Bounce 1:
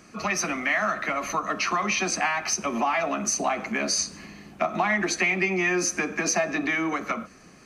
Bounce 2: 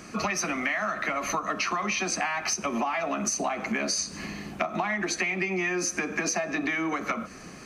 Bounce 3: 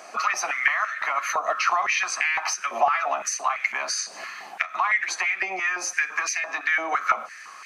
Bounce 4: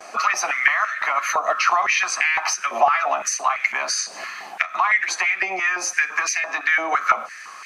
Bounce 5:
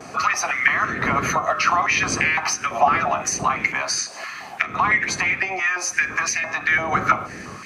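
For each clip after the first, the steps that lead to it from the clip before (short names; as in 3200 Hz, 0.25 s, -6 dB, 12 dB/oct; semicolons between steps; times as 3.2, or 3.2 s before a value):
compressor 6:1, threshold -33 dBFS, peak gain reduction 13 dB; gain +7 dB
stepped high-pass 5.9 Hz 690–2100 Hz
gate with hold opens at -36 dBFS; gain +4 dB
wind noise 310 Hz -33 dBFS; HPF 100 Hz 12 dB/oct; de-hum 151.8 Hz, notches 22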